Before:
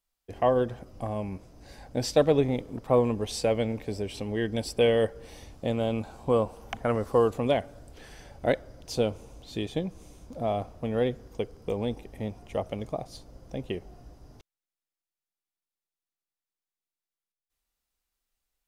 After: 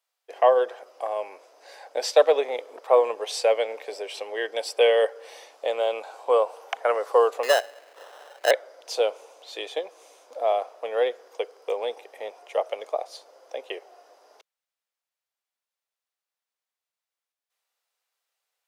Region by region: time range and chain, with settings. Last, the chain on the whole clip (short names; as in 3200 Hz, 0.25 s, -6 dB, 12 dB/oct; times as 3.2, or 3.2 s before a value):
7.43–8.51 LPF 6700 Hz + sample-rate reducer 2300 Hz
whole clip: steep high-pass 470 Hz 36 dB/oct; high shelf 6500 Hz -7.5 dB; gain +6.5 dB